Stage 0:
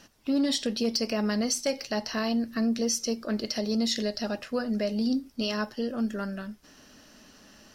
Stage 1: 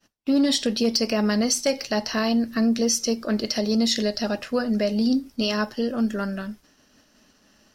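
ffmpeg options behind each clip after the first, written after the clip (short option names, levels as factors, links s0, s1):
-af "agate=range=0.0224:threshold=0.00562:ratio=3:detection=peak,volume=1.88"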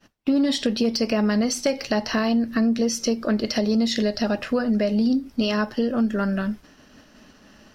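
-af "bass=f=250:g=2,treble=f=4000:g=-8,acompressor=threshold=0.0282:ratio=2.5,volume=2.66"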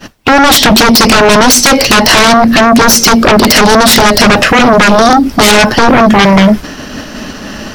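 -af "aeval=exprs='0.335*sin(PI/2*6.31*val(0)/0.335)':c=same,volume=2.51"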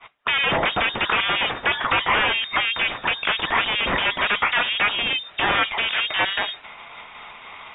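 -af "aderivative,lowpass=f=3300:t=q:w=0.5098,lowpass=f=3300:t=q:w=0.6013,lowpass=f=3300:t=q:w=0.9,lowpass=f=3300:t=q:w=2.563,afreqshift=-3900"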